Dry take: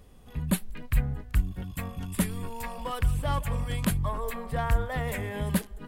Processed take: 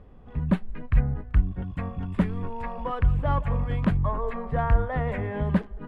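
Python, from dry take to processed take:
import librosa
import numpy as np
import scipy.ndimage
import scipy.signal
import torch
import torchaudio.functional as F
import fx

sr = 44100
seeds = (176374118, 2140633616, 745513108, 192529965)

y = scipy.signal.sosfilt(scipy.signal.butter(2, 1600.0, 'lowpass', fs=sr, output='sos'), x)
y = y * 10.0 ** (4.0 / 20.0)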